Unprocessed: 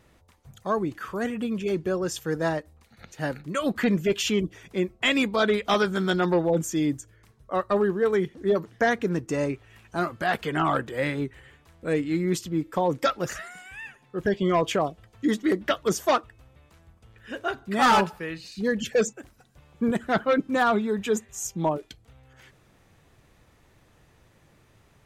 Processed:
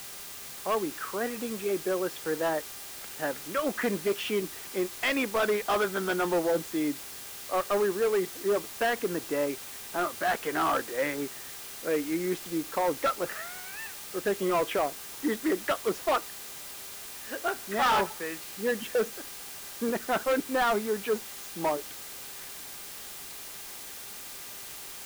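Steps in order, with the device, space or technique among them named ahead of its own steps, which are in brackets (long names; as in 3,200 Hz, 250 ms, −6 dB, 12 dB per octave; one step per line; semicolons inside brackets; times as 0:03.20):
aircraft radio (band-pass filter 350–2,300 Hz; hard clipping −21.5 dBFS, distortion −11 dB; hum with harmonics 400 Hz, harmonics 36, −50 dBFS 0 dB per octave; white noise bed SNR 12 dB)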